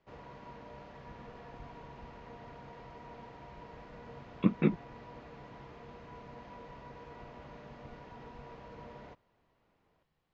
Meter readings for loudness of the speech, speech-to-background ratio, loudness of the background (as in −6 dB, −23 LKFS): −31.0 LKFS, 19.5 dB, −50.5 LKFS